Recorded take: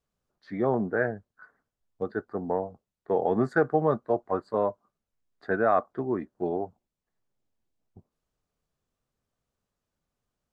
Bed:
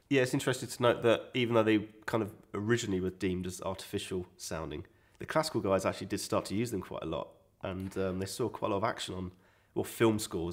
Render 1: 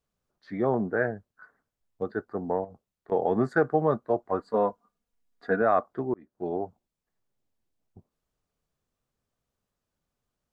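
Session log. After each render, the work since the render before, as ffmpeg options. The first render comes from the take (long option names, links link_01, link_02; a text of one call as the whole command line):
ffmpeg -i in.wav -filter_complex "[0:a]asettb=1/sr,asplit=3[link_01][link_02][link_03];[link_01]atrim=end=2.644[link_04];[link_02]atrim=start=2.64:end=3.12,asetpts=PTS-STARTPTS,afade=type=in:duration=0.004:curve=qsin,afade=type=out:start_time=0.476:duration=0.004:curve=qsin,acompressor=threshold=-39dB:ratio=6:attack=3.2:release=140:knee=1:detection=peak[link_05];[link_03]atrim=start=3.116[link_06];[link_04][link_05]acrossfade=duration=0.004:curve1=hsin:curve2=qsin[link_07];[link_07][link_06]acrossfade=duration=0.004:curve1=qsin:curve2=hsin,asettb=1/sr,asplit=3[link_08][link_09][link_10];[link_08]atrim=end=4.394[link_11];[link_09]atrim=start=4.39:end=5.62,asetpts=PTS-STARTPTS,afade=type=in:duration=0.004:curve=qsin,afade=type=out:start_time=1.226:duration=0.004:curve=qsin,aecho=1:1:4.2:0.65,atrim=end_sample=54243[link_12];[link_10]atrim=start=5.616[link_13];[link_11][link_12]acrossfade=duration=0.004:curve1=hsin:curve2=qsin[link_14];[link_14][link_13]acrossfade=duration=0.004:curve1=qsin:curve2=hsin,asplit=2[link_15][link_16];[link_15]atrim=end=6.14,asetpts=PTS-STARTPTS,afade=type=out:start_time=6.136:duration=0.004:curve=hsin[link_17];[link_16]atrim=start=6.14,asetpts=PTS-STARTPTS,afade=type=in:duration=0.44[link_18];[link_17][link_18]concat=n=2:v=0:a=1" out.wav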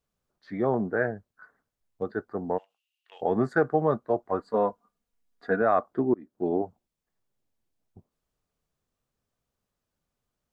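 ffmpeg -i in.wav -filter_complex "[0:a]asplit=3[link_01][link_02][link_03];[link_01]afade=type=out:start_time=2.57:duration=0.02[link_04];[link_02]highpass=frequency=2800:width_type=q:width=15,afade=type=in:start_time=2.57:duration=0.02,afade=type=out:start_time=3.21:duration=0.02[link_05];[link_03]afade=type=in:start_time=3.21:duration=0.02[link_06];[link_04][link_05][link_06]amix=inputs=3:normalize=0,asettb=1/sr,asplit=3[link_07][link_08][link_09];[link_07]atrim=end=5.914[link_10];[link_08]atrim=start=5.91:end=6.62,asetpts=PTS-STARTPTS,afade=type=in:duration=0.004:curve=qsin,afade=type=out:start_time=0.706:duration=0.004:curve=qsin,equalizer=frequency=270:width=1.2:gain=7.5[link_11];[link_09]atrim=start=6.616[link_12];[link_10][link_11]acrossfade=duration=0.004:curve1=hsin:curve2=qsin[link_13];[link_13][link_12]acrossfade=duration=0.004:curve1=qsin:curve2=hsin" out.wav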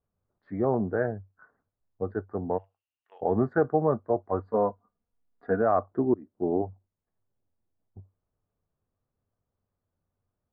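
ffmpeg -i in.wav -af "lowpass=1200,equalizer=frequency=96:width_type=o:width=0.28:gain=11.5" out.wav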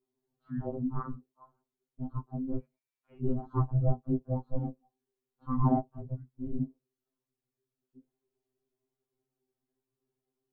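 ffmpeg -i in.wav -af "afreqshift=-440,afftfilt=real='re*2.45*eq(mod(b,6),0)':imag='im*2.45*eq(mod(b,6),0)':win_size=2048:overlap=0.75" out.wav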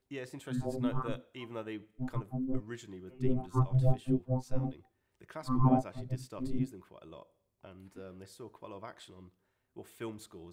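ffmpeg -i in.wav -i bed.wav -filter_complex "[1:a]volume=-14.5dB[link_01];[0:a][link_01]amix=inputs=2:normalize=0" out.wav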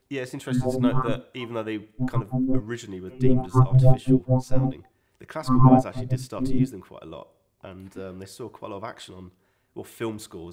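ffmpeg -i in.wav -af "volume=11dB" out.wav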